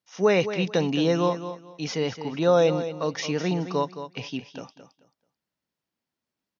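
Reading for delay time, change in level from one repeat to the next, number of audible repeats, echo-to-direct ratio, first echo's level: 218 ms, −13.0 dB, 2, −11.0 dB, −11.0 dB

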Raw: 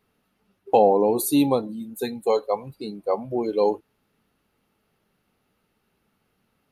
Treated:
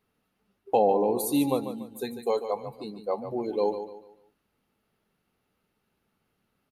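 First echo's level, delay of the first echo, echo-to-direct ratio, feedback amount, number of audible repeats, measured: −10.0 dB, 145 ms, −9.5 dB, 34%, 3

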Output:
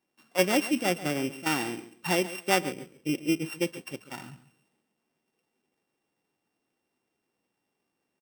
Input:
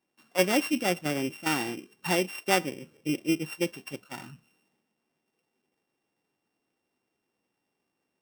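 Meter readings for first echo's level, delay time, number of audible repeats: −15.5 dB, 138 ms, 2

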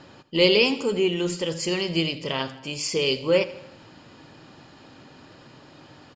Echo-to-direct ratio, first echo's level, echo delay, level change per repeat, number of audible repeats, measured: −15.5 dB, −17.0 dB, 80 ms, −5.0 dB, 4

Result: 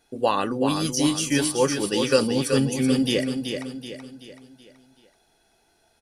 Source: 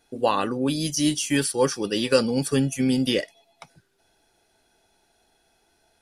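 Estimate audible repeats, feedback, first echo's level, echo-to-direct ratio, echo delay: 4, 44%, −6.5 dB, −5.5 dB, 379 ms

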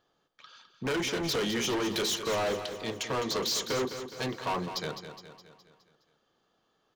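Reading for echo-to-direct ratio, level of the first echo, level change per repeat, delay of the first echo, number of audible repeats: −8.5 dB, −10.0 dB, −5.5 dB, 208 ms, 5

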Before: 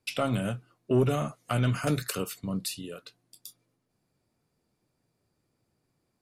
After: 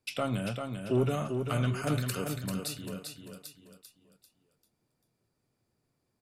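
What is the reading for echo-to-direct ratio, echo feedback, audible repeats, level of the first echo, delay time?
−5.5 dB, 37%, 4, −6.0 dB, 393 ms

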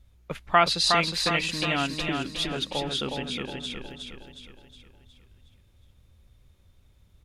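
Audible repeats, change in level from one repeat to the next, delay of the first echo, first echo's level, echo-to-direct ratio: 5, −6.5 dB, 364 ms, −4.5 dB, −3.5 dB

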